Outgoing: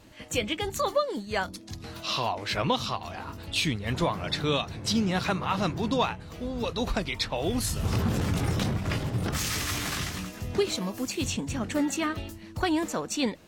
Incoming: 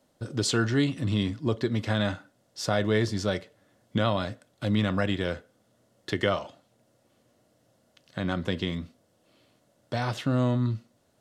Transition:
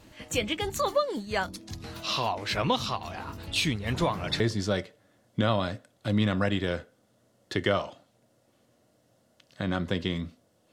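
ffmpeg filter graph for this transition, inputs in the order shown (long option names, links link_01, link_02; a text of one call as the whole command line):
ffmpeg -i cue0.wav -i cue1.wav -filter_complex "[0:a]apad=whole_dur=10.72,atrim=end=10.72,atrim=end=4.402[link_01];[1:a]atrim=start=2.968:end=9.29[link_02];[link_01][link_02]acrossfade=duration=0.004:curve1=hsin:curve2=hsin" out.wav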